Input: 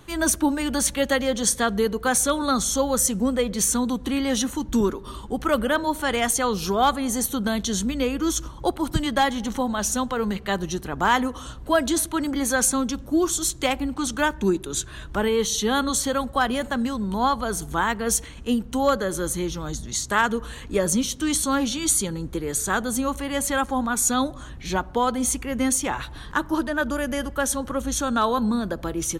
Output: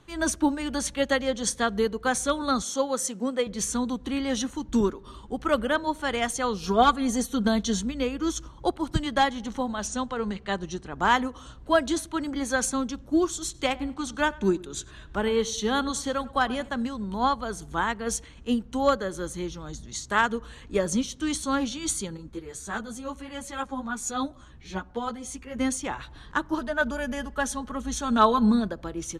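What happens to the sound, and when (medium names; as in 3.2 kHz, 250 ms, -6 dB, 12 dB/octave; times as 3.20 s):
2.62–3.47 s: high-pass 240 Hz
6.63–7.81 s: comb 4.3 ms
9.87–10.95 s: steep low-pass 9.5 kHz 72 dB/octave
13.44–16.69 s: filtered feedback delay 98 ms, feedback 41%, low-pass 2.9 kHz, level -16 dB
22.17–25.56 s: three-phase chorus
26.58–28.68 s: comb 4.7 ms
whole clip: low-pass 7.6 kHz 12 dB/octave; upward expansion 1.5:1, over -30 dBFS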